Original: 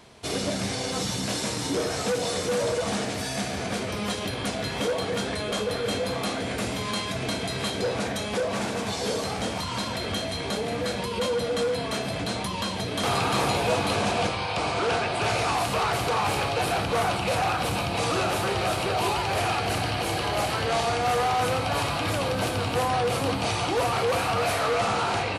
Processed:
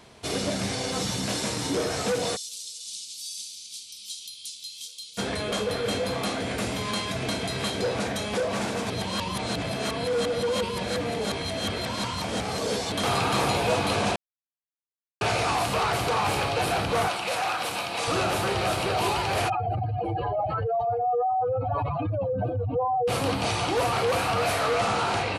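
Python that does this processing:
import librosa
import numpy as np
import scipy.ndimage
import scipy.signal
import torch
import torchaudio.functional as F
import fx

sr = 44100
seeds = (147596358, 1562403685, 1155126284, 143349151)

y = fx.cheby2_highpass(x, sr, hz=1900.0, order=4, stop_db=40, at=(2.35, 5.17), fade=0.02)
y = fx.highpass(y, sr, hz=690.0, slope=6, at=(17.08, 18.08))
y = fx.spec_expand(y, sr, power=3.2, at=(19.48, 23.07), fade=0.02)
y = fx.edit(y, sr, fx.reverse_span(start_s=8.9, length_s=4.02),
    fx.silence(start_s=14.16, length_s=1.05), tone=tone)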